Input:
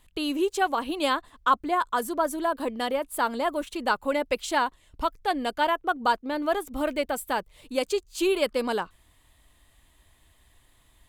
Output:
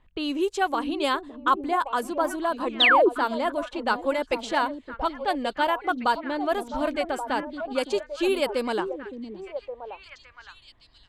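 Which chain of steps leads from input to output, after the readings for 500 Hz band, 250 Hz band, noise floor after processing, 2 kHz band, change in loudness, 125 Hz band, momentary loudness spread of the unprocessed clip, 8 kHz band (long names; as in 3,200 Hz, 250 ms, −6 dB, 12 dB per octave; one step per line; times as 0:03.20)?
+1.5 dB, +1.5 dB, −56 dBFS, +3.5 dB, +2.0 dB, can't be measured, 5 LU, −5.0 dB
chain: low-pass that shuts in the quiet parts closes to 1,900 Hz, open at −20 dBFS
echo through a band-pass that steps 564 ms, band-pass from 250 Hz, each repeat 1.4 octaves, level −4 dB
sound drawn into the spectrogram fall, 0:02.80–0:03.09, 310–4,100 Hz −17 dBFS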